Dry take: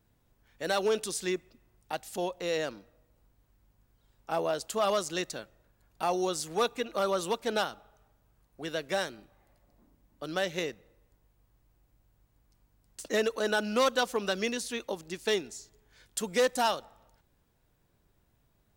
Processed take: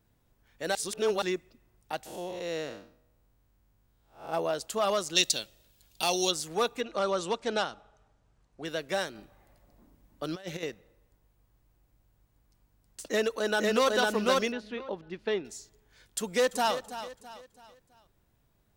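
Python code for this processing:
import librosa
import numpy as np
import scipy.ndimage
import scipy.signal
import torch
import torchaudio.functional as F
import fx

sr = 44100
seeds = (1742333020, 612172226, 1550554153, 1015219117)

y = fx.spec_blur(x, sr, span_ms=204.0, at=(2.05, 4.32), fade=0.02)
y = fx.high_shelf_res(y, sr, hz=2300.0, db=12.5, q=1.5, at=(5.15, 6.3), fade=0.02)
y = fx.lowpass(y, sr, hz=8300.0, slope=24, at=(6.81, 8.65))
y = fx.over_compress(y, sr, threshold_db=-36.0, ratio=-0.5, at=(9.15, 10.63))
y = fx.echo_throw(y, sr, start_s=13.06, length_s=0.88, ms=500, feedback_pct=15, wet_db=-1.0)
y = fx.air_absorb(y, sr, metres=340.0, at=(14.52, 15.45))
y = fx.echo_throw(y, sr, start_s=16.18, length_s=0.57, ms=330, feedback_pct=40, wet_db=-12.0)
y = fx.edit(y, sr, fx.reverse_span(start_s=0.75, length_s=0.47), tone=tone)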